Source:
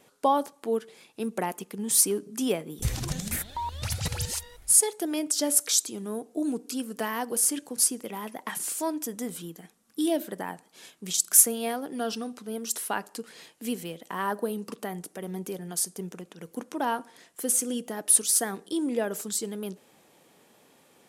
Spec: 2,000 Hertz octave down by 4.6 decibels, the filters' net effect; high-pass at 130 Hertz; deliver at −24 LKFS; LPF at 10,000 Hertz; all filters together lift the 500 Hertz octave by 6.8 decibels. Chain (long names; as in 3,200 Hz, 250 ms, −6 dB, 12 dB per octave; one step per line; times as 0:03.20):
high-pass filter 130 Hz
low-pass filter 10,000 Hz
parametric band 500 Hz +8.5 dB
parametric band 2,000 Hz −6.5 dB
level +3 dB